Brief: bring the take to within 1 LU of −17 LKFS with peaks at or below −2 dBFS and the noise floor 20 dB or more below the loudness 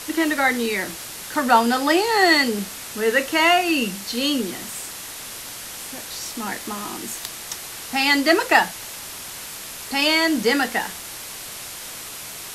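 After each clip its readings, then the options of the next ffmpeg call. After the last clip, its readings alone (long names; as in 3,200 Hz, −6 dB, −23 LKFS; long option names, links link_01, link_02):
background noise floor −35 dBFS; target noise floor −41 dBFS; integrated loudness −20.5 LKFS; sample peak −2.0 dBFS; target loudness −17.0 LKFS
→ -af "afftdn=noise_reduction=6:noise_floor=-35"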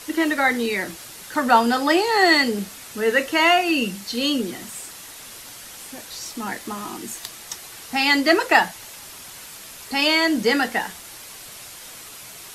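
background noise floor −40 dBFS; integrated loudness −20.0 LKFS; sample peak −2.5 dBFS; target loudness −17.0 LKFS
→ -af "volume=3dB,alimiter=limit=-2dB:level=0:latency=1"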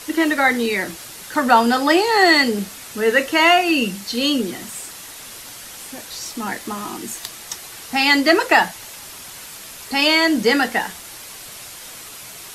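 integrated loudness −17.0 LKFS; sample peak −2.0 dBFS; background noise floor −37 dBFS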